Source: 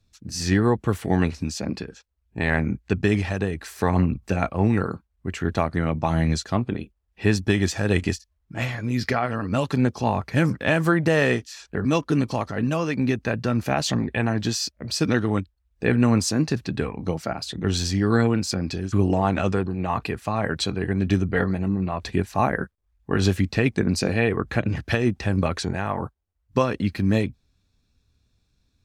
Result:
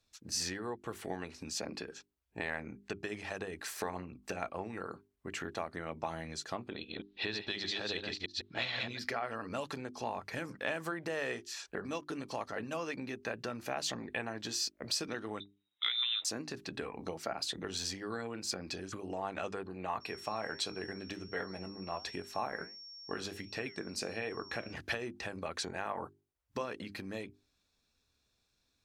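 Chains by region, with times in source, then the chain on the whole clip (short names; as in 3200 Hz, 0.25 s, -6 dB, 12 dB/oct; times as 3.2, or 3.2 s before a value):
6.71–8.99 reverse delay 0.155 s, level -4 dB + synth low-pass 3900 Hz, resonance Q 8.1
15.4–16.25 HPF 180 Hz + inverted band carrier 3800 Hz
20–24.72 flange 1.4 Hz, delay 6.1 ms, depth 9.1 ms, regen +77% + whine 5500 Hz -46 dBFS
whole clip: compressor 10:1, threshold -28 dBFS; tone controls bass -14 dB, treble +1 dB; notches 50/100/150/200/250/300/350/400 Hz; gain -2.5 dB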